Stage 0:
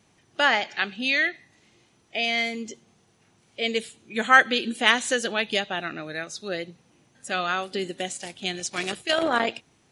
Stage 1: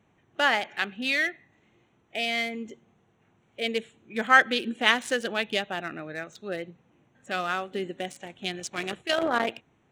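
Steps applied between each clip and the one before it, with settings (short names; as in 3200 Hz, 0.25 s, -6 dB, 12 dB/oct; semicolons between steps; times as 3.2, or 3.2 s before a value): Wiener smoothing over 9 samples; gain -2 dB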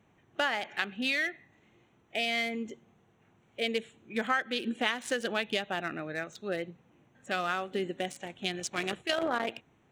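compressor 6:1, threshold -26 dBFS, peak gain reduction 13.5 dB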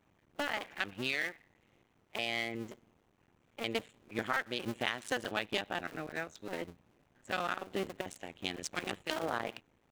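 cycle switcher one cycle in 2, muted; gain -2 dB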